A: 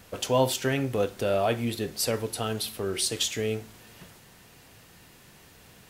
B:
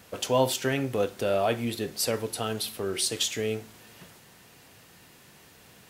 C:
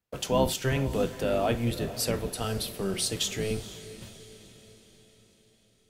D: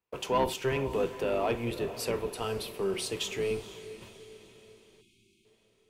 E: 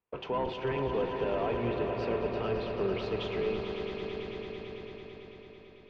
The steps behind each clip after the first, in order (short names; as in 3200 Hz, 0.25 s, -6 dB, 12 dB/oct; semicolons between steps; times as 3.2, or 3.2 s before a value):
HPF 110 Hz 6 dB/oct
octaver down 1 oct, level +2 dB; gate -47 dBFS, range -32 dB; diffused feedback echo 0.473 s, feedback 52%, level -14.5 dB; gain -2 dB
spectral gain 5.01–5.45, 390–2100 Hz -28 dB; fifteen-band EQ 400 Hz +11 dB, 1000 Hz +12 dB, 2500 Hz +9 dB; soft clip -10 dBFS, distortion -19 dB; gain -8 dB
Gaussian blur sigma 2.7 samples; limiter -24.5 dBFS, peak gain reduction 6 dB; swelling echo 0.111 s, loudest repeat 5, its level -10 dB